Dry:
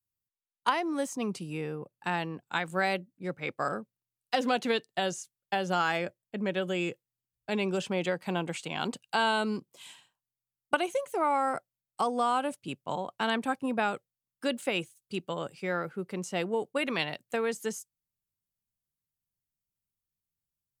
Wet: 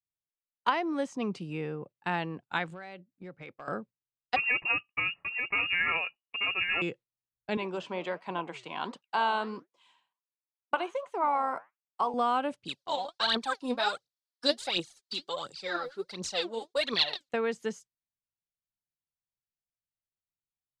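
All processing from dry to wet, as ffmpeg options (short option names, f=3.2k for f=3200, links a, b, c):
-filter_complex "[0:a]asettb=1/sr,asplit=3[a][b][c];[a]atrim=end=2.664[d];[b]atrim=start=2.66:end=3.68,asetpts=PTS-STARTPTS,afade=t=in:d=0.004:c=qsin,afade=t=out:st=1.016:d=0.004:c=qsin,acompressor=threshold=-41dB:ratio=5:attack=3.2:release=140:knee=1:detection=peak,asoftclip=type=hard:threshold=-34dB[e];[c]atrim=start=3.676[f];[d][e]acrossfade=d=0.004:c1=hsin:c2=qsin[g];[g][f]acrossfade=d=0.004:c1=qsin:c2=hsin,asettb=1/sr,asplit=3[h][i][j];[h]atrim=end=4.364[k];[i]atrim=start=4.36:end=6.82,asetpts=PTS-STARTPTS,afade=t=in:d=0.004:c=qsin,afade=t=out:st=2.456:d=0.004:c=qsin,asuperstop=centerf=1500:order=8:qfactor=7.2,aecho=1:1:885:0.531,atrim=end_sample=108486,lowpass=f=2.6k:t=q:w=0.5098,lowpass=f=2.6k:t=q:w=0.6013,lowpass=f=2.6k:t=q:w=0.9,lowpass=f=2.6k:t=q:w=2.563,afreqshift=-3000[l];[j]atrim=start=6.816[m];[k][l]acrossfade=d=0.004:c1=hsin:c2=qsin[n];[n][m]acrossfade=d=0.004:c1=qsin:c2=hsin,asettb=1/sr,asplit=3[o][p][q];[o]atrim=end=7.574[r];[p]atrim=start=7.57:end=12.14,asetpts=PTS-STARTPTS,afade=t=in:d=0.004:c=qsin,afade=t=out:st=4.566:d=0.004:c=qsin,highpass=230,equalizer=f=1k:t=o:w=0.32:g=12,flanger=delay=2.6:depth=10:regen=-81:speed=1.4:shape=triangular[s];[q]atrim=start=12.136[t];[r][s]acrossfade=d=0.004:c1=hsin:c2=qsin[u];[u][t]acrossfade=d=0.004:c1=qsin:c2=hsin,asettb=1/sr,asplit=3[v][w][x];[v]atrim=end=12.654[y];[w]atrim=start=12.65:end=17.29,asetpts=PTS-STARTPTS,afade=t=in:d=0.004:c=qsin,afade=t=out:st=4.636:d=0.004:c=qsin,highpass=f=820:p=1,highshelf=f=3.2k:t=q:w=3:g=8.5,aphaser=in_gain=1:out_gain=1:delay=4.2:decay=0.75:speed=1.4:type=triangular[z];[x]atrim=start=17.286[aa];[y][z]acrossfade=d=0.004:c1=hsin:c2=qsin[ab];[ab][aa]acrossfade=d=0.004:c1=qsin:c2=hsin,agate=range=-10dB:threshold=-48dB:ratio=16:detection=peak,lowpass=4.2k"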